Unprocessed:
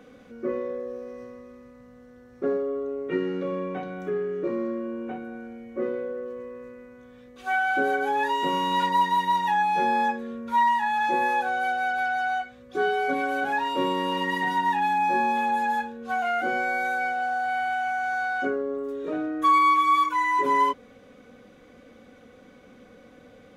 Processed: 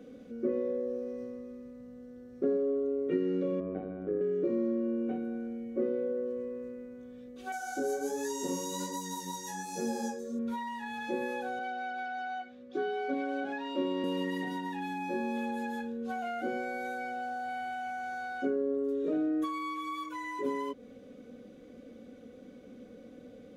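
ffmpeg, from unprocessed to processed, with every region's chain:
ffmpeg -i in.wav -filter_complex "[0:a]asettb=1/sr,asplit=3[link_01][link_02][link_03];[link_01]atrim=end=3.604[link_04];[link_02]atrim=start=3.6:end=4.21,asetpts=PTS-STARTPTS,afade=type=in:duration=0.004:curve=qsin,afade=type=out:start_time=0.606:duration=0.004:curve=qsin,lowpass=1700,tremolo=f=100:d=0.824[link_05];[link_03]atrim=start=4.206[link_06];[link_04][link_05]acrossfade=duration=0.004:curve1=hsin:curve2=qsin[link_07];[link_07][link_06]acrossfade=duration=0.004:curve1=qsin:curve2=hsin,asettb=1/sr,asplit=3[link_08][link_09][link_10];[link_08]atrim=end=7.524[link_11];[link_09]atrim=start=7.52:end=10.39,asetpts=PTS-STARTPTS,afade=type=in:duration=0.004:curve=qsin,afade=type=out:start_time=2.866:duration=0.004:curve=qsin,highshelf=frequency=4300:width_type=q:width=3:gain=14,flanger=delay=17:depth=7:speed=1.3[link_12];[link_10]atrim=start=10.386[link_13];[link_11][link_12]acrossfade=duration=0.004:curve1=hsin:curve2=qsin[link_14];[link_14][link_13]acrossfade=duration=0.004:curve1=qsin:curve2=hsin,asettb=1/sr,asplit=3[link_15][link_16][link_17];[link_15]atrim=end=11.594[link_18];[link_16]atrim=start=11.59:end=14.04,asetpts=PTS-STARTPTS,afade=type=in:duration=0.004:curve=qsin,afade=type=out:start_time=2.446:duration=0.004:curve=qsin,acrossover=split=200 5800:gain=0.2 1 0.126[link_19][link_20][link_21];[link_19][link_20][link_21]amix=inputs=3:normalize=0,bandreject=frequency=450:width=5.3[link_22];[link_17]atrim=start=14.036[link_23];[link_18][link_22]acrossfade=duration=0.004:curve1=hsin:curve2=qsin[link_24];[link_24][link_23]acrossfade=duration=0.004:curve1=qsin:curve2=hsin,bandreject=frequency=870:width=12,acompressor=threshold=-28dB:ratio=2.5,equalizer=frequency=250:width_type=o:width=1:gain=7,equalizer=frequency=500:width_type=o:width=1:gain=5,equalizer=frequency=1000:width_type=o:width=1:gain=-8,equalizer=frequency=2000:width_type=o:width=1:gain=-4,volume=-4.5dB" out.wav

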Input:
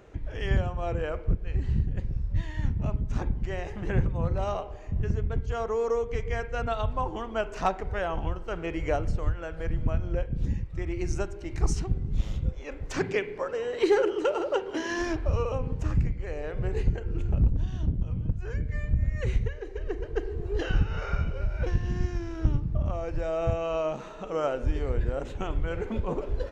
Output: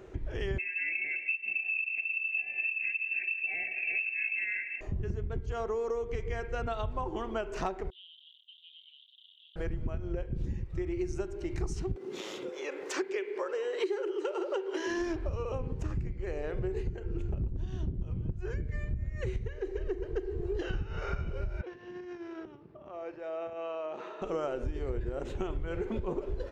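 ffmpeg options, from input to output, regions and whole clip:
ffmpeg -i in.wav -filter_complex "[0:a]asettb=1/sr,asplit=3[link_01][link_02][link_03];[link_01]atrim=end=0.584[link_04];[link_02]atrim=start=0.58:end=4.81,asetpts=PTS-STARTPTS,afade=type=in:duration=0.004:curve=qsin,afade=type=out:start_time=4.226:duration=0.004:curve=qsin,asplit=4[link_05][link_06][link_07][link_08];[link_06]adelay=170,afreqshift=35,volume=-18dB[link_09];[link_07]adelay=340,afreqshift=70,volume=-26.9dB[link_10];[link_08]adelay=510,afreqshift=105,volume=-35.7dB[link_11];[link_05][link_09][link_10][link_11]amix=inputs=4:normalize=0,atrim=end_sample=186543,lowpass=frequency=2300:width_type=q:width=0.5098,lowpass=frequency=2300:width_type=q:width=0.6013,lowpass=frequency=2300:width_type=q:width=0.9,lowpass=frequency=2300:width_type=q:width=2.563,afreqshift=-2700,asuperstop=centerf=1100:order=20:qfactor=1.4[link_12];[link_03]atrim=start=4.806[link_13];[link_04][link_12]acrossfade=duration=0.004:curve1=hsin:curve2=qsin[link_14];[link_14][link_13]acrossfade=duration=0.004:curve1=qsin:curve2=hsin,asettb=1/sr,asplit=3[link_15][link_16][link_17];[link_15]atrim=end=7.904[link_18];[link_16]atrim=start=7.9:end=9.56,asetpts=PTS-STARTPTS,afade=type=in:duration=0.004:curve=qsin,afade=type=out:start_time=1.656:duration=0.004:curve=qsin,acrusher=bits=8:dc=4:mix=0:aa=0.000001,asuperpass=centerf=3300:order=8:qfactor=4.1[link_19];[link_17]atrim=start=9.556[link_20];[link_18][link_19]acrossfade=duration=0.004:curve1=hsin:curve2=qsin[link_21];[link_21][link_20]acrossfade=duration=0.004:curve1=qsin:curve2=hsin,asettb=1/sr,asplit=3[link_22][link_23][link_24];[link_22]atrim=end=11.964[link_25];[link_23]atrim=start=11.96:end=14.87,asetpts=PTS-STARTPTS,afade=type=in:duration=0.004:curve=qsin,afade=type=out:start_time=2.906:duration=0.004:curve=qsin,highpass=frequency=360:width=0.5412,highpass=frequency=360:width=1.3066,equalizer=frequency=680:width_type=o:width=0.33:gain=-5.5,acompressor=mode=upward:threshold=-32dB:ratio=2.5:attack=3.2:release=140:knee=2.83:detection=peak[link_26];[link_24]atrim=start=14.866[link_27];[link_25][link_26]acrossfade=duration=0.004:curve1=hsin:curve2=qsin[link_28];[link_28][link_27]acrossfade=duration=0.004:curve1=qsin:curve2=hsin,asettb=1/sr,asplit=3[link_29][link_30][link_31];[link_29]atrim=end=21.614[link_32];[link_30]atrim=start=21.61:end=24.22,asetpts=PTS-STARTPTS,afade=type=in:duration=0.004:curve=qsin,afade=type=out:start_time=2.606:duration=0.004:curve=qsin,acompressor=threshold=-34dB:ratio=4:attack=3.2:release=140:knee=1:detection=peak,highpass=400,lowpass=3500[link_33];[link_31]atrim=start=24.216[link_34];[link_32][link_33]acrossfade=duration=0.004:curve1=hsin:curve2=qsin[link_35];[link_35][link_34]acrossfade=duration=0.004:curve1=qsin:curve2=hsin,equalizer=frequency=370:width_type=o:width=0.21:gain=11.5,acompressor=threshold=-30dB:ratio=6" out.wav

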